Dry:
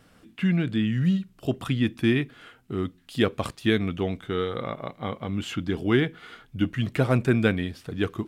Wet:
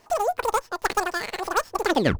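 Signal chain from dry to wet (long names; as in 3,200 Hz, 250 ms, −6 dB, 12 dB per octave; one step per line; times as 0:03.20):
turntable brake at the end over 1.48 s
change of speed 3.77×
windowed peak hold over 3 samples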